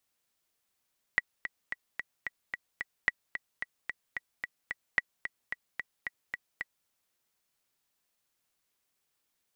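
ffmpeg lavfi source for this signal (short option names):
-f lavfi -i "aevalsrc='pow(10,(-11-10*gte(mod(t,7*60/221),60/221))/20)*sin(2*PI*1940*mod(t,60/221))*exp(-6.91*mod(t,60/221)/0.03)':d=5.7:s=44100"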